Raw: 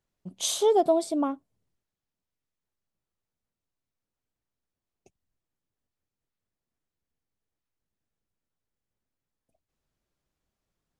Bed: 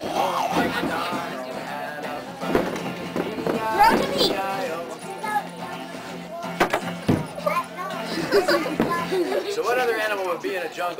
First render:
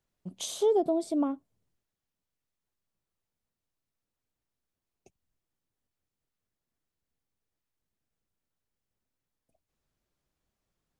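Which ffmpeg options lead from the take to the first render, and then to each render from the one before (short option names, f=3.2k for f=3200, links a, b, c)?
-filter_complex "[0:a]acrossover=split=490[a][b];[b]acompressor=threshold=-35dB:ratio=6[c];[a][c]amix=inputs=2:normalize=0"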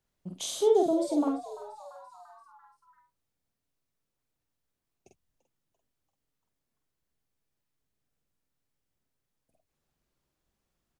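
-filter_complex "[0:a]asplit=2[a][b];[b]adelay=47,volume=-3dB[c];[a][c]amix=inputs=2:normalize=0,asplit=6[d][e][f][g][h][i];[e]adelay=341,afreqshift=140,volume=-17dB[j];[f]adelay=682,afreqshift=280,volume=-22dB[k];[g]adelay=1023,afreqshift=420,volume=-27.1dB[l];[h]adelay=1364,afreqshift=560,volume=-32.1dB[m];[i]adelay=1705,afreqshift=700,volume=-37.1dB[n];[d][j][k][l][m][n]amix=inputs=6:normalize=0"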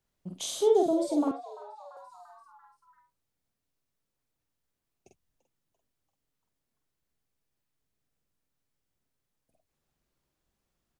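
-filter_complex "[0:a]asettb=1/sr,asplit=3[a][b][c];[a]atrim=end=1.314[d];[b]atrim=start=1.31:end=1.97,asetpts=PTS-STARTPTS,afade=t=in:d=0.004:c=qsin,afade=t=out:st=0.656:d=0.004:c=qsin,acrossover=split=400 4400:gain=0.0794 1 0.2[e][f][g];[e][f][g]amix=inputs=3:normalize=0[h];[c]atrim=start=1.966[i];[d][h]acrossfade=d=0.004:c1=hsin:c2=qsin[j];[j][i]acrossfade=d=0.004:c1=qsin:c2=hsin"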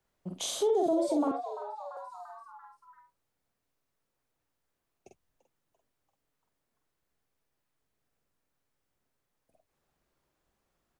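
-filter_complex "[0:a]acrossover=split=350|2100[a][b][c];[b]acontrast=54[d];[a][d][c]amix=inputs=3:normalize=0,alimiter=limit=-20dB:level=0:latency=1:release=77"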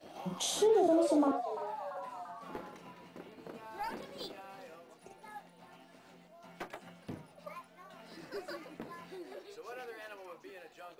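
-filter_complex "[1:a]volume=-24dB[a];[0:a][a]amix=inputs=2:normalize=0"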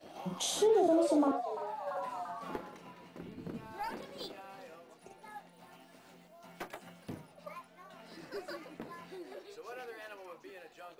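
-filter_complex "[0:a]asplit=3[a][b][c];[a]afade=t=out:st=3.19:d=0.02[d];[b]asubboost=boost=7:cutoff=250,afade=t=in:st=3.19:d=0.02,afade=t=out:st=3.72:d=0.02[e];[c]afade=t=in:st=3.72:d=0.02[f];[d][e][f]amix=inputs=3:normalize=0,asettb=1/sr,asplit=3[g][h][i];[g]atrim=end=5.534[j];[h]atrim=start=5.53:end=7.26,asetpts=PTS-STARTPTS,afade=t=in:d=0.004:c=qsin,afade=t=out:st=1.726:d=0.004:c=qsin,highshelf=f=8.1k:g=7.5[k];[i]atrim=start=7.256[l];[j][k]acrossfade=d=0.004:c1=hsin:c2=qsin[m];[m][l]acrossfade=d=0.004:c1=qsin:c2=hsin,asplit=3[n][o][p];[n]atrim=end=1.872[q];[o]atrim=start=1.868:end=2.562,asetpts=PTS-STARTPTS,volume=4.5dB[r];[p]atrim=start=2.558[s];[q][r]acrossfade=d=0.004:c1=hsin:c2=hsin[t];[t][s]acrossfade=d=0.004:c1=hsin:c2=hsin"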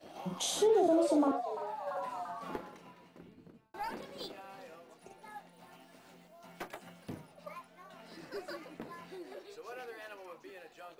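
-filter_complex "[0:a]asplit=2[a][b];[a]atrim=end=3.74,asetpts=PTS-STARTPTS,afade=t=out:st=2.54:d=1.2[c];[b]atrim=start=3.74,asetpts=PTS-STARTPTS,afade=t=in:d=0.004:c=hsin[d];[c][d]concat=n=2:v=0:a=1"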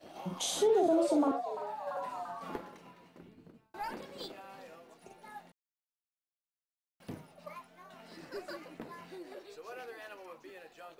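-filter_complex "[0:a]asplit=3[a][b][c];[a]atrim=end=5.52,asetpts=PTS-STARTPTS,afade=t=out:st=5.516:d=0.004:c=hsin[d];[b]atrim=start=5.52:end=7,asetpts=PTS-STARTPTS,volume=0[e];[c]atrim=start=7,asetpts=PTS-STARTPTS,afade=t=in:d=0.004:c=hsin[f];[d][e][f]concat=n=3:v=0:a=1"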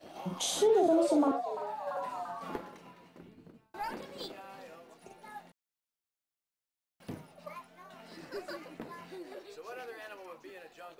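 -af "volume=1.5dB"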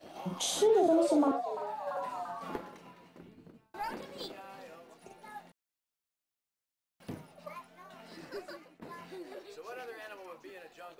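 -filter_complex "[0:a]asplit=2[a][b];[a]atrim=end=8.82,asetpts=PTS-STARTPTS,afade=t=out:st=8.28:d=0.54:silence=0.133352[c];[b]atrim=start=8.82,asetpts=PTS-STARTPTS,afade=t=in:d=0.004:c=hsin:silence=0.133352[d];[c][d]concat=n=2:v=0:a=1"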